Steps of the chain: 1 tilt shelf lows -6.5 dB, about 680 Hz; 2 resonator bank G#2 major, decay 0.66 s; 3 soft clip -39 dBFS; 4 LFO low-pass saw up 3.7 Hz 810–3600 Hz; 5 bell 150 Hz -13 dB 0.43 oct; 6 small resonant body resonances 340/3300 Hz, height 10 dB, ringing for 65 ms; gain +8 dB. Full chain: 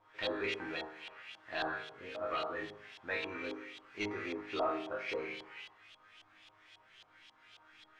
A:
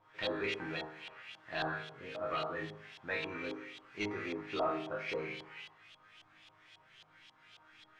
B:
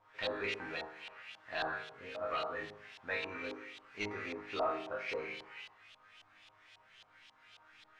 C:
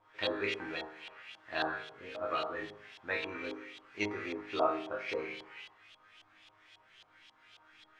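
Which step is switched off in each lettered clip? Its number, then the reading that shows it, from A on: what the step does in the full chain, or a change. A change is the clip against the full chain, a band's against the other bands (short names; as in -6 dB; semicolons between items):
5, 125 Hz band +6.5 dB; 6, 250 Hz band -4.5 dB; 3, distortion -13 dB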